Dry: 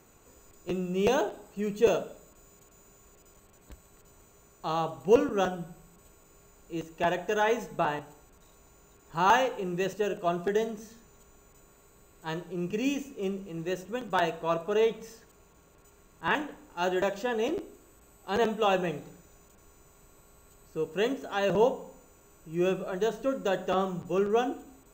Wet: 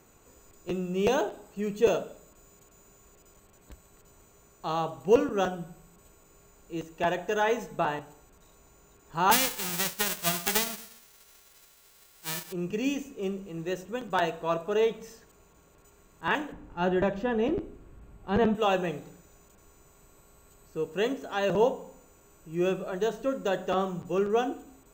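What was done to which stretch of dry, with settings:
0:09.31–0:12.51: spectral envelope flattened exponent 0.1
0:16.52–0:18.55: bass and treble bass +12 dB, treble −14 dB

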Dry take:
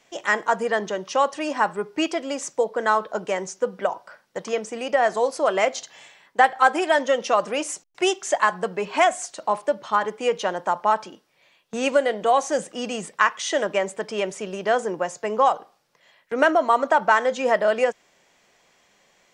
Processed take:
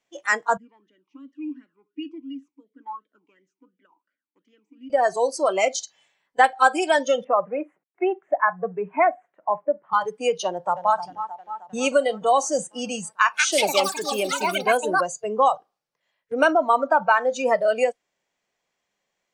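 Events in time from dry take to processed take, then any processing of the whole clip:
0:00.57–0:04.90: formant filter swept between two vowels i-u 2.8 Hz
0:07.24–0:09.93: elliptic band-pass filter 150–2,000 Hz
0:10.45–0:10.99: delay throw 310 ms, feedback 75%, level −8 dB
0:13.16–0:15.49: delay with pitch and tempo change per echo 199 ms, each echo +6 semitones, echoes 3
0:16.52–0:17.30: high-shelf EQ 7,300 Hz → 4,800 Hz −7.5 dB
whole clip: noise reduction from a noise print of the clip's start 18 dB; dynamic equaliser 7,100 Hz, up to +6 dB, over −44 dBFS, Q 1

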